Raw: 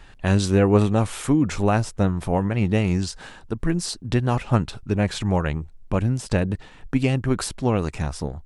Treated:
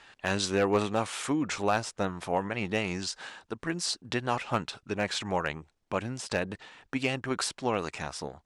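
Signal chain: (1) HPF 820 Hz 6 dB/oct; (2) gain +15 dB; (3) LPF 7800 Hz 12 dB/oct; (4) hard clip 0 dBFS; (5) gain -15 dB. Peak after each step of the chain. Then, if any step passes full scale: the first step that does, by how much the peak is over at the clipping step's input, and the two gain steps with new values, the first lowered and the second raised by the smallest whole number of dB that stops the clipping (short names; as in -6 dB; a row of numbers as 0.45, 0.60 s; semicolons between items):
-9.5, +5.5, +5.5, 0.0, -15.0 dBFS; step 2, 5.5 dB; step 2 +9 dB, step 5 -9 dB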